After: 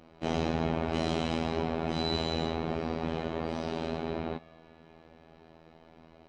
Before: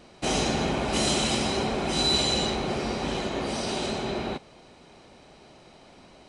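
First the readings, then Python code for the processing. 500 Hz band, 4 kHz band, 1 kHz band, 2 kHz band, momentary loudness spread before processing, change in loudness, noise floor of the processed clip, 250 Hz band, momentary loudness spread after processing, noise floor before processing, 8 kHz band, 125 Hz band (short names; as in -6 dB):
-3.5 dB, -12.0 dB, -5.0 dB, -8.0 dB, 8 LU, -6.0 dB, -58 dBFS, -3.5 dB, 4 LU, -53 dBFS, -21.0 dB, -2.0 dB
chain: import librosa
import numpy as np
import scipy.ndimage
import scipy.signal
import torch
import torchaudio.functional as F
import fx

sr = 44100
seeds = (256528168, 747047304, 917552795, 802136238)

y = fx.robotise(x, sr, hz=81.4)
y = fx.spacing_loss(y, sr, db_at_10k=28)
y = fx.echo_banded(y, sr, ms=223, feedback_pct=81, hz=2000.0, wet_db=-20.5)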